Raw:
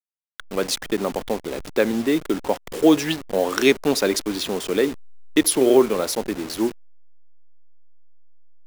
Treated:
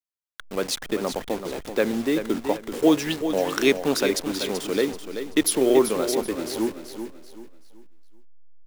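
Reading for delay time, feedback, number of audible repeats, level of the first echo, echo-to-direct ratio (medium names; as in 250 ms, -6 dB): 383 ms, 34%, 3, -9.0 dB, -8.5 dB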